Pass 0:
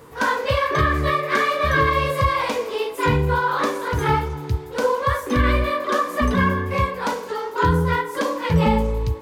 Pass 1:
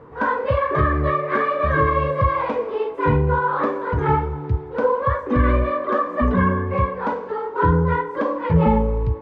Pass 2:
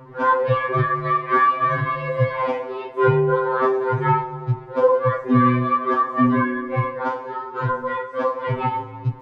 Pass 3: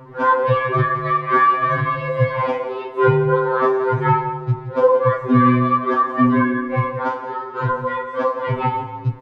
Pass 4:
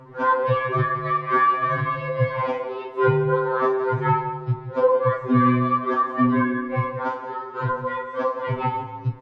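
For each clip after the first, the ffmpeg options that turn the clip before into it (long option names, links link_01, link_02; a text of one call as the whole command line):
ffmpeg -i in.wav -af "lowpass=1400,volume=1.5dB" out.wav
ffmpeg -i in.wav -af "afftfilt=real='re*2.45*eq(mod(b,6),0)':imag='im*2.45*eq(mod(b,6),0)':win_size=2048:overlap=0.75,volume=4dB" out.wav
ffmpeg -i in.wav -filter_complex "[0:a]asplit=2[link_01][link_02];[link_02]adelay=169.1,volume=-12dB,highshelf=frequency=4000:gain=-3.8[link_03];[link_01][link_03]amix=inputs=2:normalize=0,volume=2dB" out.wav
ffmpeg -i in.wav -af "volume=-4dB" -ar 22050 -c:a wmav2 -b:a 128k out.wma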